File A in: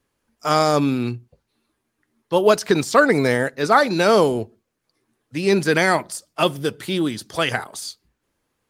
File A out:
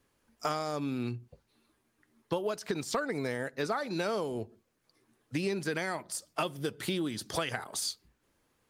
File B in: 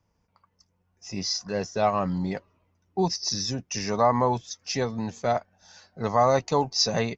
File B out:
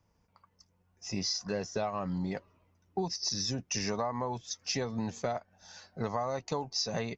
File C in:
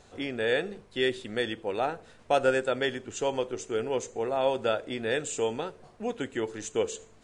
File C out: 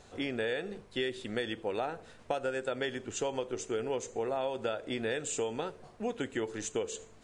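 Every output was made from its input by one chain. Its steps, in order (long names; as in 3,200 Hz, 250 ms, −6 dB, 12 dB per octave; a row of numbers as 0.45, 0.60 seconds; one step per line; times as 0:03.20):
downward compressor 16 to 1, threshold −29 dBFS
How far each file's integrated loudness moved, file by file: −15.0, −8.0, −5.5 LU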